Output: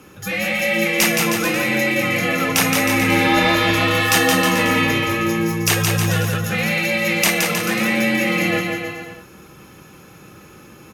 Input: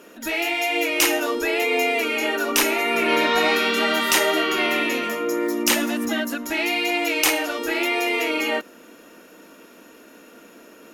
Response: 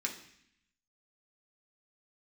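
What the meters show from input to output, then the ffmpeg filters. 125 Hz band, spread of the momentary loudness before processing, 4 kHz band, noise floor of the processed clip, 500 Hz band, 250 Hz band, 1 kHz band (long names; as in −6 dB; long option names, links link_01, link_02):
+26.5 dB, 6 LU, +2.0 dB, −44 dBFS, +1.0 dB, +5.5 dB, +2.5 dB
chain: -af "aecho=1:1:170|314.5|437.3|541.7|630.5:0.631|0.398|0.251|0.158|0.1,afreqshift=-130,volume=1.5dB"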